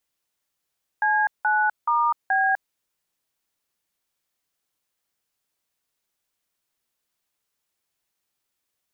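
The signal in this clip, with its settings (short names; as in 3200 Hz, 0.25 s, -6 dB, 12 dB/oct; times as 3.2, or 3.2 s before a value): DTMF "C9*B", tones 0.251 s, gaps 0.176 s, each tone -20.5 dBFS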